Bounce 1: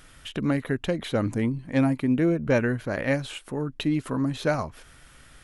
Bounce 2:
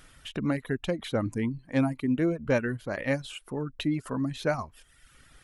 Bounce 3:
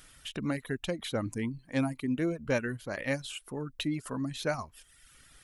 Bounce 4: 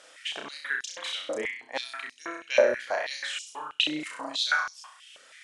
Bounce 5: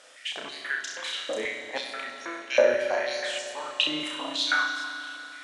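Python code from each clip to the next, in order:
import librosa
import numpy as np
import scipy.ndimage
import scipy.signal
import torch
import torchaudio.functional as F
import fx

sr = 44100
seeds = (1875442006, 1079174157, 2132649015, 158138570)

y1 = fx.dereverb_blind(x, sr, rt60_s=0.88)
y1 = F.gain(torch.from_numpy(y1), -2.5).numpy()
y2 = fx.high_shelf(y1, sr, hz=3000.0, db=9.0)
y2 = F.gain(torch.from_numpy(y2), -4.5).numpy()
y3 = scipy.signal.sosfilt(scipy.signal.butter(4, 8100.0, 'lowpass', fs=sr, output='sos'), y2)
y3 = fx.room_flutter(y3, sr, wall_m=5.6, rt60_s=0.59)
y3 = fx.filter_held_highpass(y3, sr, hz=6.2, low_hz=550.0, high_hz=5500.0)
y3 = F.gain(torch.from_numpy(y3), 2.5).numpy()
y4 = fx.rev_fdn(y3, sr, rt60_s=3.2, lf_ratio=1.0, hf_ratio=0.85, size_ms=24.0, drr_db=4.5)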